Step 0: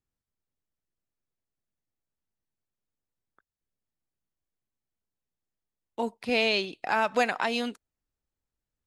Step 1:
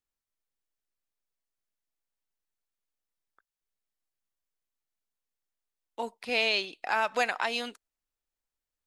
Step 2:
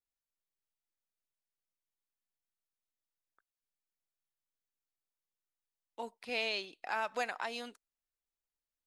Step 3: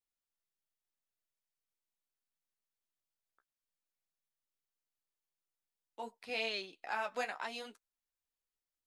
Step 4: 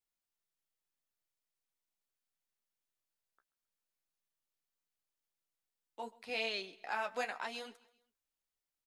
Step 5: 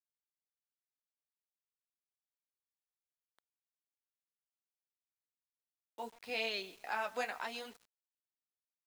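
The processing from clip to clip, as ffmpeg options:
-af "equalizer=f=110:w=0.34:g=-13.5"
-af "adynamicequalizer=threshold=0.00891:dfrequency=2800:dqfactor=1.1:tfrequency=2800:tqfactor=1.1:attack=5:release=100:ratio=0.375:range=2.5:mode=cutabove:tftype=bell,volume=-7.5dB"
-af "flanger=delay=8.4:depth=8.2:regen=-24:speed=0.77:shape=triangular,volume=1.5dB"
-af "aecho=1:1:133|266|399:0.0794|0.0381|0.0183"
-af "acrusher=bits=9:mix=0:aa=0.000001"

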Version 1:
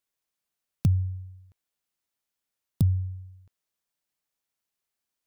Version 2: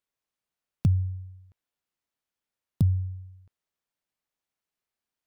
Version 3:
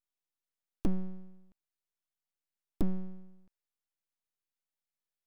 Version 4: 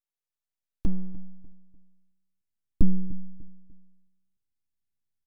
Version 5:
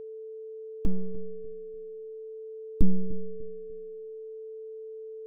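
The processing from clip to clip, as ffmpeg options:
-af "highshelf=f=4.4k:g=-8.5"
-af "aeval=exprs='abs(val(0))':c=same,volume=-4.5dB"
-filter_complex "[0:a]asubboost=boost=11.5:cutoff=200,asplit=2[a][b];[b]adelay=297,lowpass=f=1.6k:p=1,volume=-17dB,asplit=2[c][d];[d]adelay=297,lowpass=f=1.6k:p=1,volume=0.37,asplit=2[e][f];[f]adelay=297,lowpass=f=1.6k:p=1,volume=0.37[g];[a][c][e][g]amix=inputs=4:normalize=0,volume=-4.5dB"
-af "aeval=exprs='val(0)+0.0141*sin(2*PI*440*n/s)':c=same,volume=-1dB"

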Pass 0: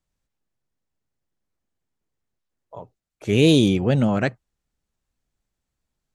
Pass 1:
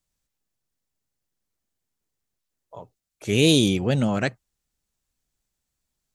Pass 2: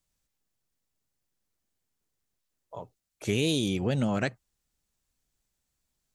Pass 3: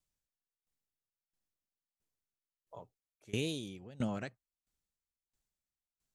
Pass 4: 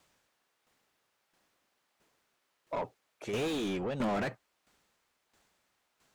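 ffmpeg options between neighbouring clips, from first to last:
-af "highshelf=f=3.4k:g=10.5,volume=-3dB"
-af "acompressor=threshold=-24dB:ratio=4"
-af "aeval=exprs='val(0)*pow(10,-22*if(lt(mod(1.5*n/s,1),2*abs(1.5)/1000),1-mod(1.5*n/s,1)/(2*abs(1.5)/1000),(mod(1.5*n/s,1)-2*abs(1.5)/1000)/(1-2*abs(1.5)/1000))/20)':c=same,volume=-5.5dB"
-filter_complex "[0:a]asplit=2[a][b];[b]highpass=f=720:p=1,volume=39dB,asoftclip=type=tanh:threshold=-20dB[c];[a][c]amix=inputs=2:normalize=0,lowpass=f=1.2k:p=1,volume=-6dB,volume=-3dB"

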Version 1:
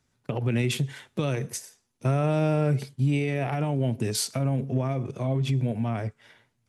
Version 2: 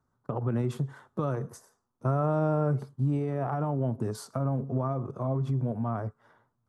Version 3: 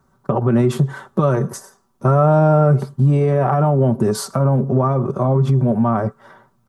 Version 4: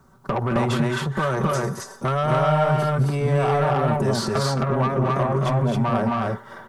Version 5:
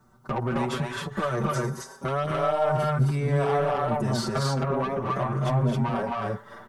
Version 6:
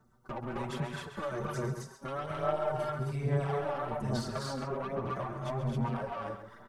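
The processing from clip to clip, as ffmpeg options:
-af "highshelf=f=1.7k:t=q:w=3:g=-12,volume=-3.5dB"
-filter_complex "[0:a]aecho=1:1:5.2:0.51,asplit=2[a][b];[b]alimiter=level_in=2dB:limit=-24dB:level=0:latency=1:release=153,volume=-2dB,volume=2.5dB[c];[a][c]amix=inputs=2:normalize=0,volume=8.5dB"
-filter_complex "[0:a]acrossover=split=850|5200[a][b][c];[a]acompressor=threshold=-27dB:ratio=4[d];[b]acompressor=threshold=-26dB:ratio=4[e];[c]acompressor=threshold=-50dB:ratio=4[f];[d][e][f]amix=inputs=3:normalize=0,asoftclip=type=tanh:threshold=-22.5dB,asplit=2[g][h];[h]aecho=0:1:218.7|265.3:0.398|0.891[i];[g][i]amix=inputs=2:normalize=0,volume=5dB"
-filter_complex "[0:a]asplit=2[a][b];[b]adelay=6.3,afreqshift=0.75[c];[a][c]amix=inputs=2:normalize=1,volume=-1.5dB"
-filter_complex "[0:a]tremolo=f=260:d=0.462,aphaser=in_gain=1:out_gain=1:delay=3.6:decay=0.45:speed=1.2:type=sinusoidal,asplit=2[a][b];[b]adelay=134.1,volume=-9dB,highshelf=f=4k:g=-3.02[c];[a][c]amix=inputs=2:normalize=0,volume=-8.5dB"

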